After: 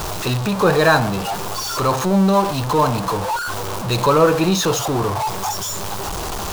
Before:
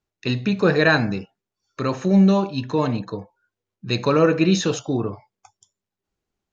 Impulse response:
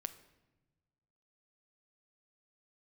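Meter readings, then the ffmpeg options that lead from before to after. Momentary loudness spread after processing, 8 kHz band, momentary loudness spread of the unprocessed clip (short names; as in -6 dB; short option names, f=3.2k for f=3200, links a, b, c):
10 LU, n/a, 12 LU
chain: -af "aeval=exprs='val(0)+0.5*0.1*sgn(val(0))':c=same,equalizer=f=250:t=o:w=1:g=-7,equalizer=f=1k:t=o:w=1:g=8,equalizer=f=2k:t=o:w=1:g=-7,volume=1.5dB"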